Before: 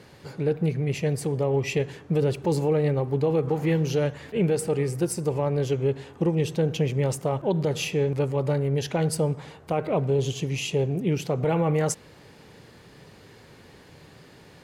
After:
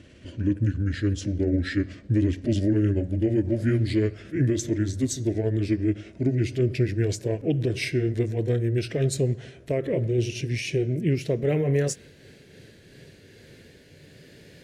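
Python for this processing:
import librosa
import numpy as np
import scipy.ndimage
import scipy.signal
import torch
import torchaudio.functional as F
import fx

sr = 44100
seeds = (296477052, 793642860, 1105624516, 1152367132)

y = fx.pitch_glide(x, sr, semitones=-7.5, runs='ending unshifted')
y = fx.band_shelf(y, sr, hz=990.0, db=-14.5, octaves=1.0)
y = F.gain(torch.from_numpy(y), 1.5).numpy()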